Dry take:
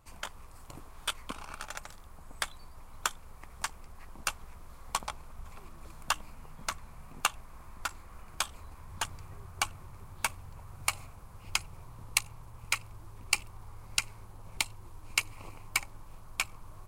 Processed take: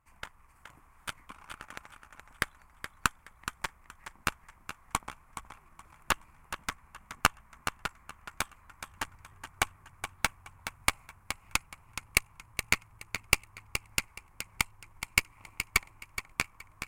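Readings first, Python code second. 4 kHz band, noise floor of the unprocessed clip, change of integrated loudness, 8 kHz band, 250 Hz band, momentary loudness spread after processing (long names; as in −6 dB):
−0.5 dB, −50 dBFS, +1.5 dB, −0.5 dB, +6.5 dB, 19 LU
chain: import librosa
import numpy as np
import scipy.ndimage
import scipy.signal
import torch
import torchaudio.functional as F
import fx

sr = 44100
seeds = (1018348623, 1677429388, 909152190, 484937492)

y = fx.graphic_eq(x, sr, hz=(500, 1000, 2000, 4000), db=(-6, 4, 9, -10))
y = fx.echo_feedback(y, sr, ms=422, feedback_pct=40, wet_db=-5.5)
y = fx.cheby_harmonics(y, sr, harmonics=(3, 4, 5, 7), levels_db=(-24, -16, -25, -18), full_scale_db=-4.5)
y = y * librosa.db_to_amplitude(2.0)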